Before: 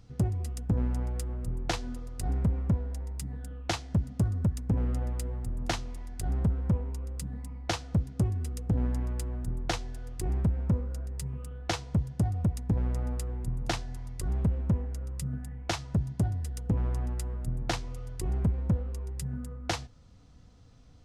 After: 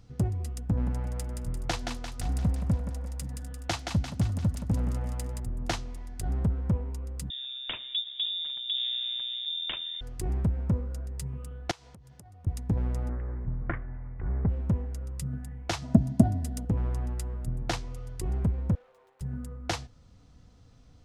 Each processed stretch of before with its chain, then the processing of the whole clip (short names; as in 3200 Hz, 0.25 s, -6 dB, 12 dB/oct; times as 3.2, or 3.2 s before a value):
0.68–5.4 bell 400 Hz -9.5 dB 0.24 oct + thinning echo 0.173 s, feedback 58%, high-pass 380 Hz, level -4.5 dB
7.3–10.01 echo 0.763 s -23.5 dB + compressor 1.5:1, threshold -38 dBFS + inverted band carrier 3600 Hz
11.71–12.47 low shelf 350 Hz -11.5 dB + compressor 16:1, threshold -47 dBFS
13.09–14.49 minimum comb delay 0.59 ms + steep low-pass 2200 Hz 48 dB/oct
15.82–16.65 high shelf 5300 Hz +5.5 dB + small resonant body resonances 240/650 Hz, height 17 dB
18.75–19.21 median filter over 25 samples + HPF 550 Hz 24 dB/oct + tube stage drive 54 dB, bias 0.55
whole clip: dry